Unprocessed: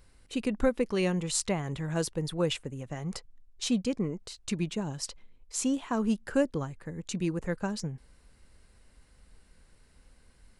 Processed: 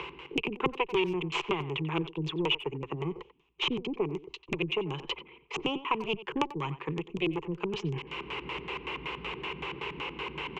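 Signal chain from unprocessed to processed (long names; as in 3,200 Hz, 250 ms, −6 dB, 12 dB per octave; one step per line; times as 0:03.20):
high-pass filter 63 Hz 24 dB per octave
harmonic generator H 4 −9 dB, 5 −24 dB, 6 −23 dB, 8 −21 dB, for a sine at −10.5 dBFS
three-way crossover with the lows and the highs turned down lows −20 dB, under 310 Hz, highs −22 dB, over 3,500 Hz
reversed playback
upward compression, threshold −32 dBFS
reversed playback
auto-filter low-pass square 5.3 Hz 240–3,500 Hz
EQ curve with evenly spaced ripples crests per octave 0.72, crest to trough 17 dB
far-end echo of a speakerphone 90 ms, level −15 dB
multiband upward and downward compressor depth 70%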